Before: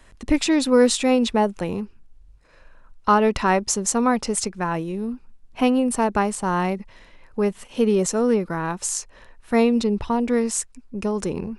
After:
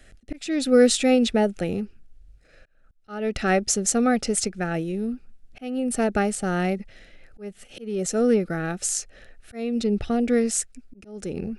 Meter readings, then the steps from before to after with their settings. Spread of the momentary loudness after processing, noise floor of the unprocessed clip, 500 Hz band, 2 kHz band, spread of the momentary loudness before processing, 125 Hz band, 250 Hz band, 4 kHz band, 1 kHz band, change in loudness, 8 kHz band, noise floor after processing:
19 LU, -51 dBFS, -2.0 dB, -2.0 dB, 11 LU, -1.0 dB, -2.5 dB, -1.5 dB, -7.5 dB, -2.0 dB, -0.5 dB, -57 dBFS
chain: Butterworth band-stop 1000 Hz, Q 2.1; auto swell 0.432 s

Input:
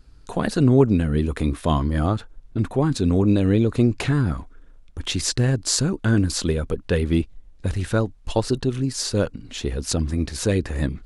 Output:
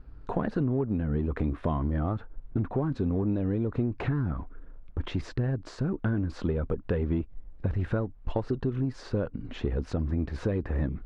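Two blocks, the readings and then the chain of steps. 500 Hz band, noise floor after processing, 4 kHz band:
-8.5 dB, -48 dBFS, -20.0 dB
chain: in parallel at -9 dB: overloaded stage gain 23 dB; on the sum: compressor 6:1, threshold -25 dBFS, peak gain reduction 15 dB; LPF 1500 Hz 12 dB/oct

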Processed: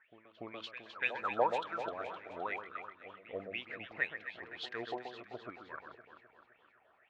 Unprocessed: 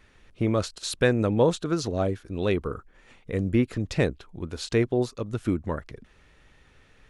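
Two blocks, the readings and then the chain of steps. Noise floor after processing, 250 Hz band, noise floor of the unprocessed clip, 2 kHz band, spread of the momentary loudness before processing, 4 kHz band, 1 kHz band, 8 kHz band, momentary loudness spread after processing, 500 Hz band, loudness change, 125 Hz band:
-69 dBFS, -24.0 dB, -58 dBFS, -3.5 dB, 12 LU, -10.5 dB, -2.0 dB, under -25 dB, 16 LU, -14.5 dB, -13.0 dB, -31.5 dB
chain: wah 2 Hz 630–3300 Hz, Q 11; pre-echo 0.289 s -14.5 dB; low-pass opened by the level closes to 1800 Hz, open at -39.5 dBFS; on a send: echo with dull and thin repeats by turns 0.129 s, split 1700 Hz, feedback 73%, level -6 dB; on the sum: gain +6.5 dB

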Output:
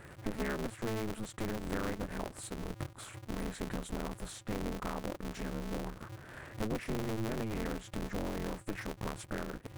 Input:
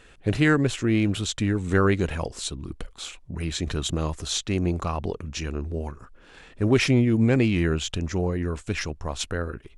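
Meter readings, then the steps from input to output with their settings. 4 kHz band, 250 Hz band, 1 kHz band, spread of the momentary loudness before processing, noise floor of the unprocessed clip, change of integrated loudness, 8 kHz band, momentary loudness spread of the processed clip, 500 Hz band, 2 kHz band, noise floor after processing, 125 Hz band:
-16.5 dB, -14.0 dB, -8.5 dB, 12 LU, -52 dBFS, -14.5 dB, -14.0 dB, 6 LU, -12.5 dB, -14.0 dB, -54 dBFS, -16.5 dB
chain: compressor 4:1, threshold -38 dBFS, peak gain reduction 19.5 dB; band shelf 4200 Hz -14 dB; polarity switched at an audio rate 110 Hz; gain +1.5 dB

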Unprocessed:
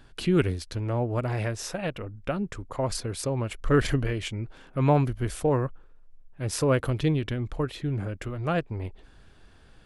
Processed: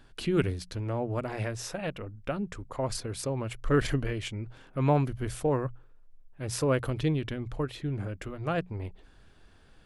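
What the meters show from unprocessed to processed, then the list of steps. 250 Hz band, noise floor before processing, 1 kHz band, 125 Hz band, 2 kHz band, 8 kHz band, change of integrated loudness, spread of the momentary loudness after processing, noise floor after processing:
-3.5 dB, -53 dBFS, -3.0 dB, -4.0 dB, -3.0 dB, -3.0 dB, -3.5 dB, 11 LU, -56 dBFS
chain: notches 60/120/180 Hz; gain -3 dB

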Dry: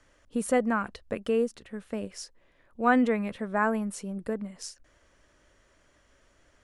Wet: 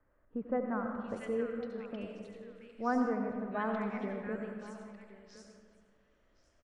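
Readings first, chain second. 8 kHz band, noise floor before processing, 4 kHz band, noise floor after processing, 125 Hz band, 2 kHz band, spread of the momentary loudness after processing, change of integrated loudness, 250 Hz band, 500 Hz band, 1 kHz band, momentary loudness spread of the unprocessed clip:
under -20 dB, -65 dBFS, -13.0 dB, -71 dBFS, n/a, -10.5 dB, 18 LU, -7.5 dB, -6.5 dB, -7.0 dB, -8.0 dB, 17 LU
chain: air absorption 120 m; three bands offset in time lows, mids, highs 0.68/0.75 s, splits 1800/5800 Hz; spectral gain 3.86–4.19, 250–2400 Hz +11 dB; on a send: echo 1.066 s -17.5 dB; on the sum: digital reverb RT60 1.9 s, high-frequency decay 0.4×, pre-delay 50 ms, DRR 3.5 dB; warbling echo 90 ms, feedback 51%, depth 82 cents, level -15 dB; gain -8.5 dB

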